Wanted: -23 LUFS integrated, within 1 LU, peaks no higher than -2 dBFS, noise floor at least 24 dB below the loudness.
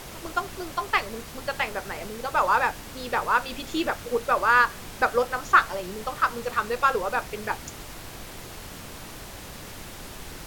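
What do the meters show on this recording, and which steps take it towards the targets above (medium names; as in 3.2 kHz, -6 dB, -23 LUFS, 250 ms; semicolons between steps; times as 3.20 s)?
noise floor -41 dBFS; noise floor target -50 dBFS; loudness -25.5 LUFS; peak level -6.0 dBFS; loudness target -23.0 LUFS
-> noise print and reduce 9 dB; trim +2.5 dB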